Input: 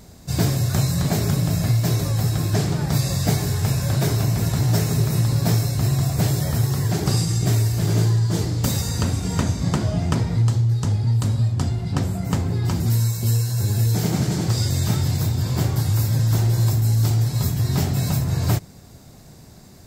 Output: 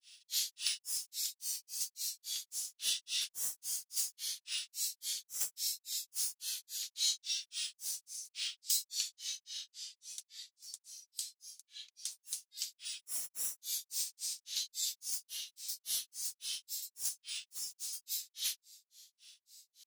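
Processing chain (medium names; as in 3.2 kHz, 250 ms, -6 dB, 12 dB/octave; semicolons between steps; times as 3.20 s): inverse Chebyshev high-pass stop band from 580 Hz, stop band 80 dB; granulator 239 ms, grains 3.6 per s, pitch spread up and down by 7 st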